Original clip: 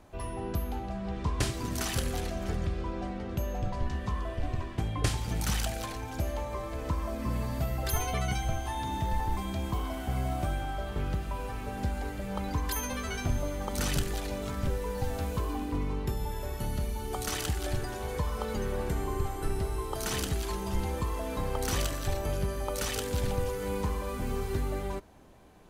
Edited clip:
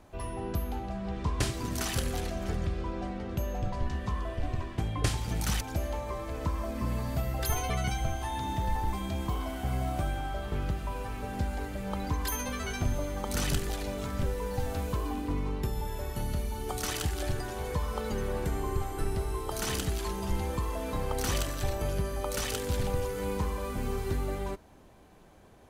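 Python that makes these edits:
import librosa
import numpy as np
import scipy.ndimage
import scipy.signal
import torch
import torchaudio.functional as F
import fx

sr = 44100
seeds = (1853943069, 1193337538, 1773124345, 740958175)

y = fx.edit(x, sr, fx.cut(start_s=5.61, length_s=0.44), tone=tone)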